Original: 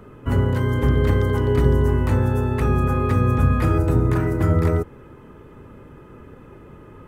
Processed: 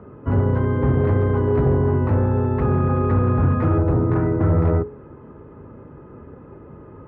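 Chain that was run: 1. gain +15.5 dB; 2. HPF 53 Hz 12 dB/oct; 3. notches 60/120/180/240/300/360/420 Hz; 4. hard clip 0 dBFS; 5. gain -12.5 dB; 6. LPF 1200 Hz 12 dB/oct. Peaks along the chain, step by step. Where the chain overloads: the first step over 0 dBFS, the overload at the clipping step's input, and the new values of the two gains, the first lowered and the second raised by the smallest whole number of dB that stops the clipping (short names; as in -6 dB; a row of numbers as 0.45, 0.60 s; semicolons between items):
+11.0, +10.0, +9.0, 0.0, -12.5, -12.0 dBFS; step 1, 9.0 dB; step 1 +6.5 dB, step 5 -3.5 dB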